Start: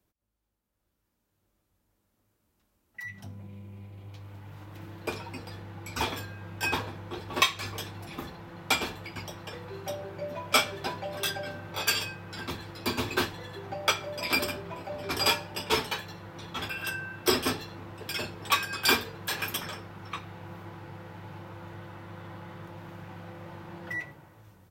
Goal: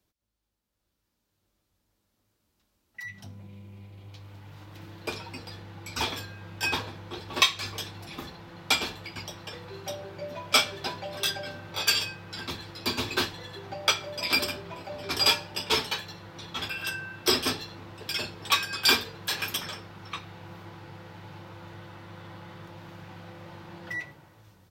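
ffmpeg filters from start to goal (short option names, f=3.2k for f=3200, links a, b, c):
-af "equalizer=f=4.4k:t=o:w=1.4:g=7,volume=-1.5dB"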